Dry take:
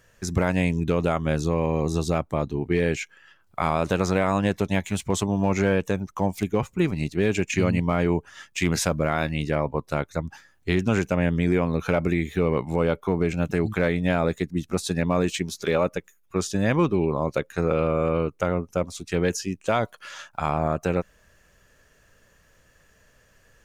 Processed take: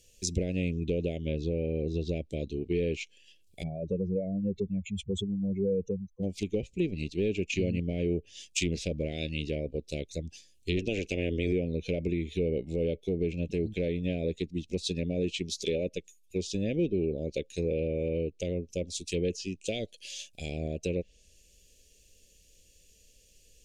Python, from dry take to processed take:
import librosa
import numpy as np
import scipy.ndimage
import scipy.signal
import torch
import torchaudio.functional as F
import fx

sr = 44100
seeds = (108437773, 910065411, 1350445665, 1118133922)

y = fx.lowpass(x, sr, hz=4400.0, slope=12, at=(1.17, 2.09))
y = fx.spec_expand(y, sr, power=2.8, at=(3.62, 6.22), fade=0.02)
y = fx.spec_clip(y, sr, under_db=16, at=(10.76, 11.51), fade=0.02)
y = scipy.signal.sosfilt(scipy.signal.ellip(3, 1.0, 60, [500.0, 2500.0], 'bandstop', fs=sr, output='sos'), y)
y = fx.env_lowpass_down(y, sr, base_hz=1900.0, full_db=-20.5)
y = fx.graphic_eq_10(y, sr, hz=(125, 250, 500, 1000, 2000, 4000, 8000), db=(-12, -4, -6, 7, -6, 3, 5))
y = F.gain(torch.from_numpy(y), 1.0).numpy()